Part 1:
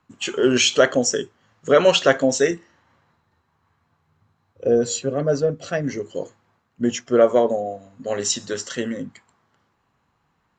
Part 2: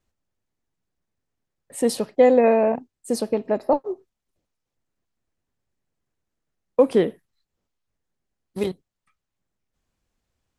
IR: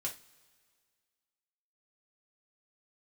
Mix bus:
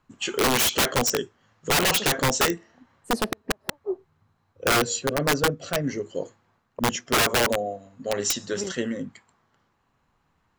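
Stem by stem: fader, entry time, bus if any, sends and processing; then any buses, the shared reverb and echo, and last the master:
-2.0 dB, 0.00 s, no send, none
+2.5 dB, 0.00 s, no send, treble shelf 3.5 kHz -10.5 dB; inverted gate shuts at -12 dBFS, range -39 dB; auto duck -10 dB, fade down 0.75 s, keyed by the first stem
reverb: none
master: integer overflow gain 15 dB

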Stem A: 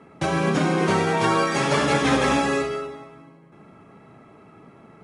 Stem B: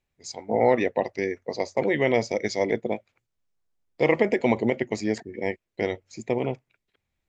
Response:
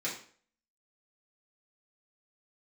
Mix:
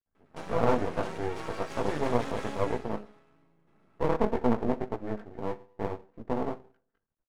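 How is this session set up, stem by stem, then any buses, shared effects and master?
-15.5 dB, 0.15 s, no send, none
+0.5 dB, 0.00 s, send -15 dB, chorus 1.8 Hz, delay 16 ms, depth 4.2 ms; Chebyshev low-pass 1.6 kHz, order 5; comb 4.5 ms, depth 32%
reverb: on, RT60 0.50 s, pre-delay 3 ms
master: half-wave rectifier

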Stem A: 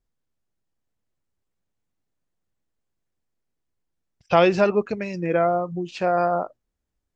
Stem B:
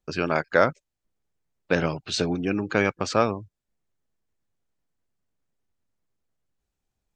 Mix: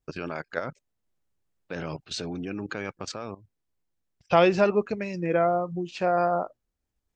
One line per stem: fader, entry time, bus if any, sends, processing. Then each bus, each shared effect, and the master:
-2.5 dB, 0.00 s, no send, none
-1.0 dB, 0.00 s, no send, level held to a coarse grid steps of 16 dB; auto duck -11 dB, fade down 1.45 s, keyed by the first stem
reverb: none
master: none

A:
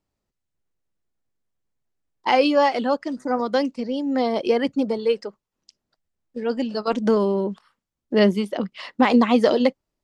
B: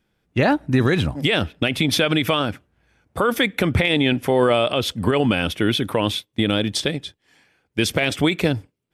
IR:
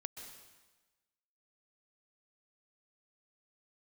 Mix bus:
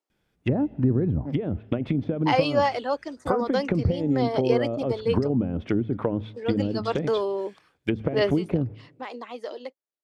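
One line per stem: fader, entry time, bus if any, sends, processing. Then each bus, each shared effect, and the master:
8.27 s -4 dB -> 8.59 s -17 dB, 0.00 s, no send, high-pass 320 Hz 24 dB/octave
-3.5 dB, 0.10 s, send -17 dB, low-pass that closes with the level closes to 380 Hz, closed at -15.5 dBFS; de-hum 108.5 Hz, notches 2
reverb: on, RT60 1.2 s, pre-delay 118 ms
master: none

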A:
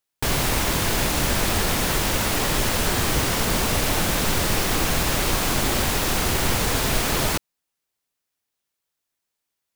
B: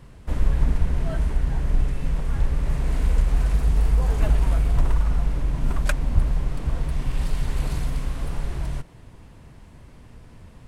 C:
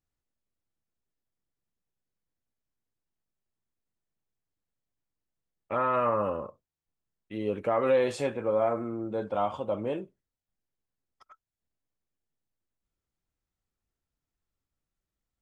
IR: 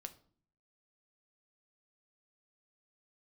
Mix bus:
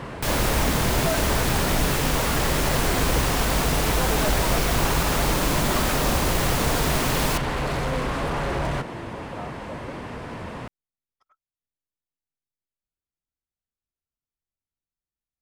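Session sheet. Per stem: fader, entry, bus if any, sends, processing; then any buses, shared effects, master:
-3.0 dB, 0.00 s, no send, none
-10.5 dB, 0.00 s, no send, overdrive pedal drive 42 dB, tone 1.2 kHz, clips at -5 dBFS
-10.0 dB, 0.00 s, no send, none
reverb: none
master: none

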